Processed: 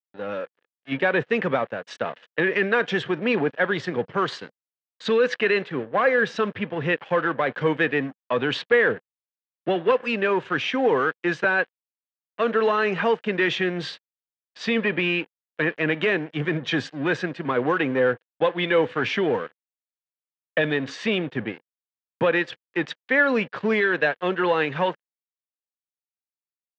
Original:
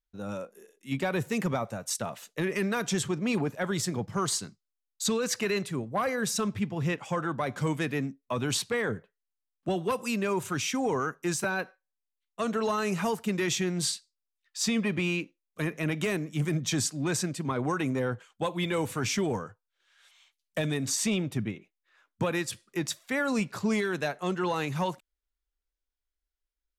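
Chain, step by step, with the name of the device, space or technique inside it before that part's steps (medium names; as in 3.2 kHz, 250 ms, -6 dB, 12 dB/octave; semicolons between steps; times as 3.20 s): blown loudspeaker (crossover distortion -45.5 dBFS; cabinet simulation 190–3500 Hz, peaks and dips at 200 Hz -4 dB, 490 Hz +7 dB, 1.7 kHz +9 dB, 3 kHz +4 dB); trim +6.5 dB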